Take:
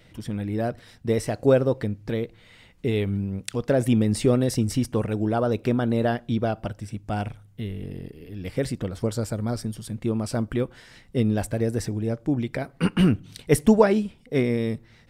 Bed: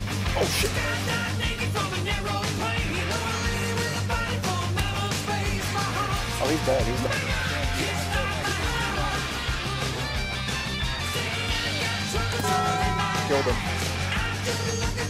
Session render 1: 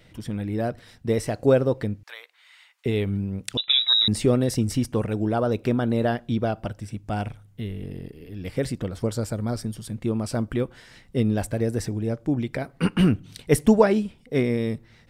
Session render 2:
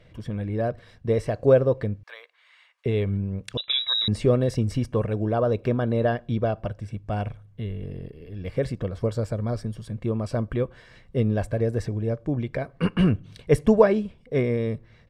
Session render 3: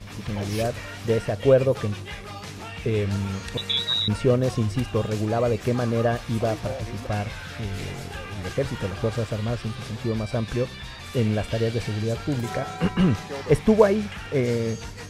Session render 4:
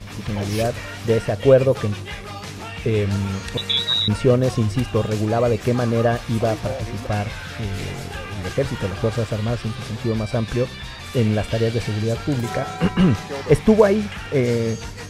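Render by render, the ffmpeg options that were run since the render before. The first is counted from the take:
-filter_complex "[0:a]asettb=1/sr,asplit=3[a][b][c];[a]atrim=end=2.034[d];[b]atrim=start=2.03:end=2.86,asetpts=PTS-STARTPTS,afade=t=in:d=0.004:c=qsin,afade=t=out:st=0.826:d=0.004:c=qsin,highpass=f=950:w=0.5412,highpass=f=950:w=1.3066[e];[c]atrim=start=2.856[f];[d][e]acrossfade=d=0.004:c1=hsin:c2=qsin[g];[g][f]acrossfade=d=0.004:c1=qsin:c2=hsin,asettb=1/sr,asplit=3[h][i][j];[h]atrim=end=3.574[k];[i]atrim=start=3.57:end=4.08,asetpts=PTS-STARTPTS,afade=t=in:d=0.004:c=qsin,afade=t=out:st=0.506:d=0.004:c=qsin,lowpass=f=3.4k:t=q:w=0.5098,lowpass=f=3.4k:t=q:w=0.6013,lowpass=f=3.4k:t=q:w=0.9,lowpass=f=3.4k:t=q:w=2.563,afreqshift=-4000[l];[j]atrim=start=4.076[m];[k][l]acrossfade=d=0.004:c1=hsin:c2=qsin[n];[n][m]acrossfade=d=0.004:c1=qsin:c2=hsin"
-af "aemphasis=mode=reproduction:type=75kf,aecho=1:1:1.8:0.39"
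-filter_complex "[1:a]volume=-10dB[a];[0:a][a]amix=inputs=2:normalize=0"
-af "volume=4dB,alimiter=limit=-2dB:level=0:latency=1"

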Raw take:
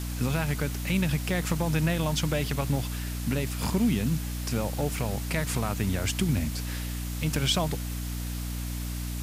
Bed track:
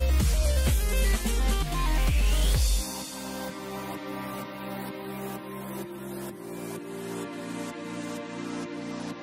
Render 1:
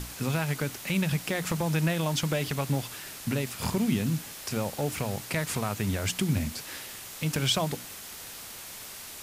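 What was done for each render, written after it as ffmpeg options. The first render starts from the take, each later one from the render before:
-af "bandreject=f=60:t=h:w=6,bandreject=f=120:t=h:w=6,bandreject=f=180:t=h:w=6,bandreject=f=240:t=h:w=6,bandreject=f=300:t=h:w=6"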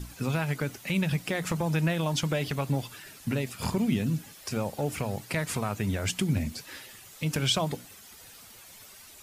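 -af "afftdn=nr=11:nf=-43"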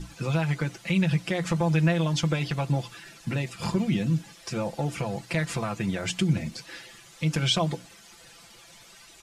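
-af "lowpass=7.3k,aecho=1:1:5.9:0.7"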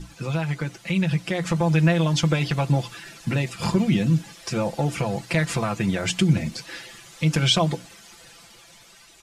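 -af "dynaudnorm=f=620:g=5:m=5dB"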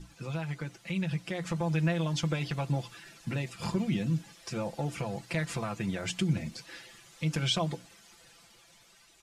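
-af "volume=-9.5dB"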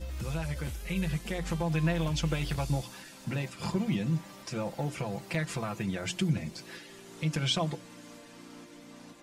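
-filter_complex "[1:a]volume=-15dB[a];[0:a][a]amix=inputs=2:normalize=0"

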